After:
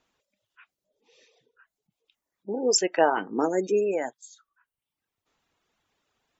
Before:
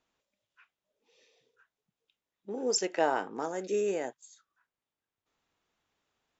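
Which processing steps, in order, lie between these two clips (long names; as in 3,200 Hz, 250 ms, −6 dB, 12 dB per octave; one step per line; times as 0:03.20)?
gate on every frequency bin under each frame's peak −30 dB strong
reverb reduction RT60 0.82 s
0:03.17–0:03.69: parametric band 300 Hz +8.5 dB 1.2 octaves
level +7 dB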